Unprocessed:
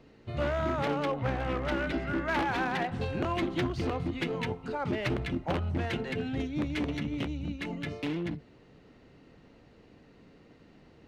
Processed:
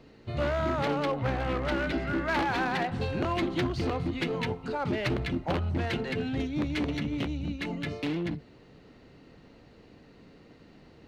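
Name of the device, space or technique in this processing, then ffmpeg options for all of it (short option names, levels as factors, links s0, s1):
parallel distortion: -filter_complex "[0:a]asplit=2[s0][s1];[s1]asoftclip=type=hard:threshold=0.0237,volume=0.355[s2];[s0][s2]amix=inputs=2:normalize=0,equalizer=f=4300:t=o:w=0.31:g=4"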